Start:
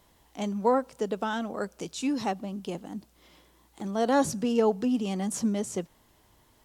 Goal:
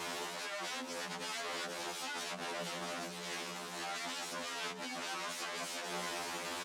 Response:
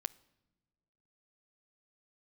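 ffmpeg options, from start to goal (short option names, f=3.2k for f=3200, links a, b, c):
-af "aeval=exprs='val(0)+0.5*0.02*sgn(val(0))':c=same,equalizer=f=550:t=o:w=0.3:g=-6,bandreject=f=60:t=h:w=6,bandreject=f=120:t=h:w=6,bandreject=f=180:t=h:w=6,bandreject=f=240:t=h:w=6,bandreject=f=300:t=h:w=6,bandreject=f=360:t=h:w=6,acompressor=threshold=-38dB:ratio=6,aeval=exprs='(mod(133*val(0)+1,2)-1)/133':c=same,highpass=280,lowpass=7.3k,aecho=1:1:668:0.188,afftfilt=real='re*2*eq(mod(b,4),0)':imag='im*2*eq(mod(b,4),0)':win_size=2048:overlap=0.75,volume=9.5dB"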